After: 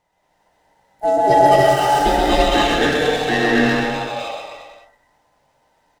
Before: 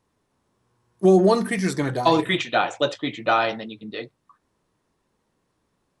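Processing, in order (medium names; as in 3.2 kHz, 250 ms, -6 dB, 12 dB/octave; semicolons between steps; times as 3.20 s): every band turned upside down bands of 1 kHz; in parallel at +1 dB: compression, threshold -29 dBFS, peak gain reduction 16.5 dB; on the sum: de-hum 51.89 Hz, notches 35; on a send: bouncing-ball echo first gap 130 ms, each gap 0.9×, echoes 5; on the sum: gated-style reverb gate 330 ms rising, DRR -5 dB; sliding maximum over 3 samples; trim -4 dB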